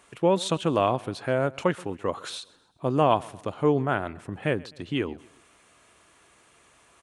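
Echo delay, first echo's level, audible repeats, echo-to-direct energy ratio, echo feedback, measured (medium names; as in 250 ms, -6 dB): 129 ms, -22.5 dB, 2, -21.5 dB, 43%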